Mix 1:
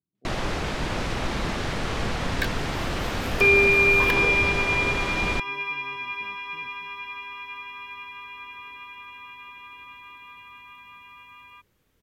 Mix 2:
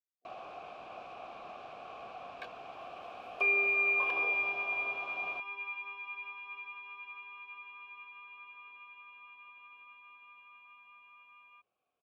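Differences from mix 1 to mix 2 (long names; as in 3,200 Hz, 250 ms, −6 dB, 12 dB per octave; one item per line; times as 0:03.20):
speech −11.5 dB
first sound −6.0 dB
master: add formant filter a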